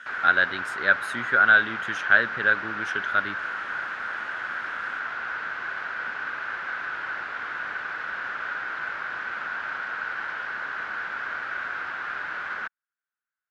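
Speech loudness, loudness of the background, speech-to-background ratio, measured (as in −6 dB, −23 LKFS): −22.5 LKFS, −31.0 LKFS, 8.5 dB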